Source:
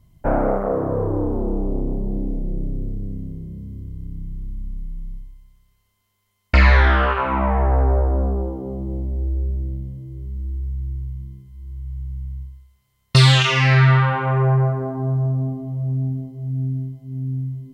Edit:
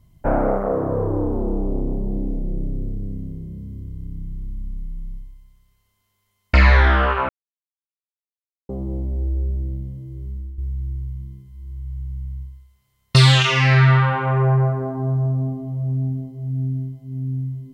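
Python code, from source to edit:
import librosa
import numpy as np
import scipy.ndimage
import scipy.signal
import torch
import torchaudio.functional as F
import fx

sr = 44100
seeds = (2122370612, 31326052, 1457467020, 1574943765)

y = fx.edit(x, sr, fx.silence(start_s=7.29, length_s=1.4),
    fx.fade_out_to(start_s=10.3, length_s=0.28, floor_db=-11.0), tone=tone)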